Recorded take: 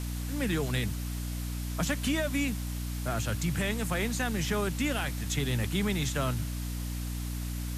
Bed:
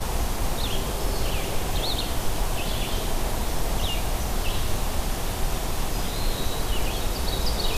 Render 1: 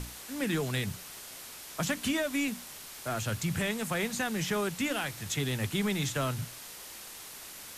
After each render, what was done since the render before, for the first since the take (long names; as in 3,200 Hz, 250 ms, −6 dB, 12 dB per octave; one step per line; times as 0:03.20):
mains-hum notches 60/120/180/240/300 Hz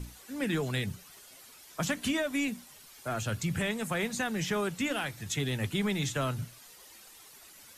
broadband denoise 11 dB, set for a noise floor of −46 dBFS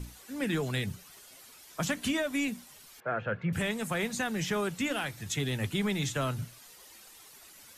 0:03.00–0:03.53: loudspeaker in its box 150–2,300 Hz, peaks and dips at 180 Hz +5 dB, 270 Hz −8 dB, 500 Hz +9 dB, 1,600 Hz +7 dB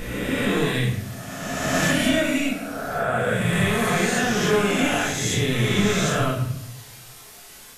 peak hold with a rise ahead of every peak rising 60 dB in 2.02 s
rectangular room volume 180 cubic metres, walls mixed, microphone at 1.5 metres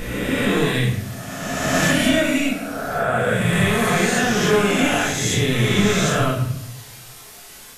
level +3 dB